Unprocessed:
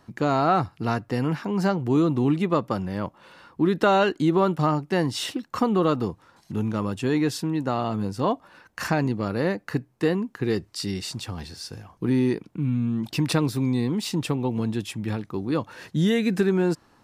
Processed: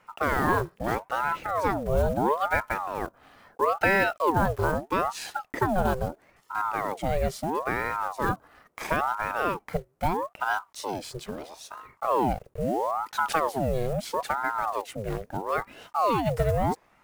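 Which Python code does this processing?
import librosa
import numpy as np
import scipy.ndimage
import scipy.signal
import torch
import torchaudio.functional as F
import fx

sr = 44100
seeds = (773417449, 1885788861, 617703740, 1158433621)

y = fx.block_float(x, sr, bits=5)
y = fx.peak_eq(y, sr, hz=4200.0, db=-6.0, octaves=1.8)
y = fx.ring_lfo(y, sr, carrier_hz=710.0, swing_pct=65, hz=0.76)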